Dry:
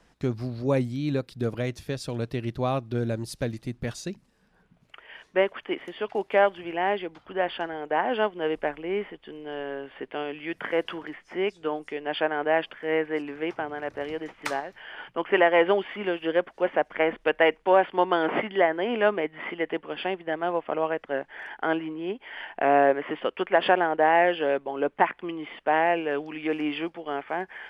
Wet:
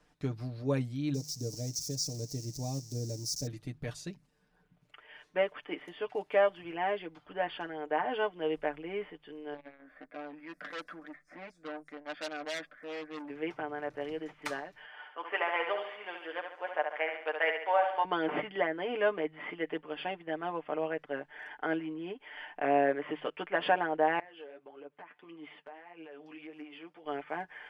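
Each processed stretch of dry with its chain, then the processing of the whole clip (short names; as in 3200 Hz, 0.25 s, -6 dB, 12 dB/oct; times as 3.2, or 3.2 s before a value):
1.14–3.47 switching spikes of -24.5 dBFS + EQ curve 240 Hz 0 dB, 860 Hz -10 dB, 1300 Hz -27 dB, 1900 Hz -19 dB, 3300 Hz -19 dB, 5600 Hz +13 dB, 9900 Hz -10 dB
9.54–13.3 fixed phaser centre 600 Hz, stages 8 + core saturation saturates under 3800 Hz
14.86–18.05 Chebyshev high-pass 760 Hz + feedback echo 70 ms, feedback 48%, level -6 dB + mismatched tape noise reduction decoder only
24.19–27.05 HPF 250 Hz 6 dB/oct + compressor 10:1, threshold -35 dBFS + flange 1.7 Hz, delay 4.8 ms, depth 7.5 ms, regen +30%
whole clip: comb 6.7 ms, depth 69%; de-hum 50.37 Hz, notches 3; gain -8.5 dB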